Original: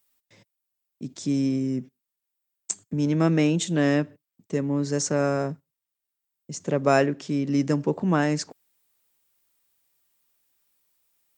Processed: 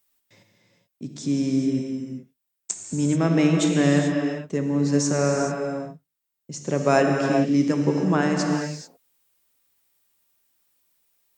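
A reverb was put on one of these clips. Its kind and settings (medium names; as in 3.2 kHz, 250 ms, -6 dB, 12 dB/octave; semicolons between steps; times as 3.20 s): gated-style reverb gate 460 ms flat, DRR 1.5 dB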